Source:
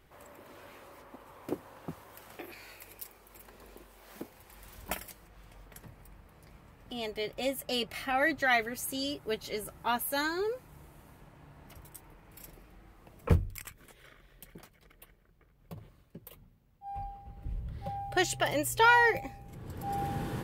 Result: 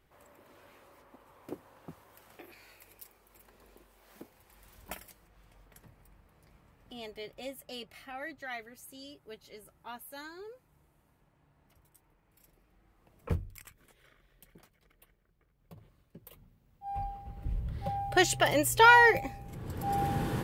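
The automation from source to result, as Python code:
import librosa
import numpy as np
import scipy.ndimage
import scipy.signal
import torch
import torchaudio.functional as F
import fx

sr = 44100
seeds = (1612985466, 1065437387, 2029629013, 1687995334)

y = fx.gain(x, sr, db=fx.line((6.97, -6.5), (8.32, -14.0), (12.44, -14.0), (13.33, -7.0), (15.76, -7.0), (16.99, 3.5)))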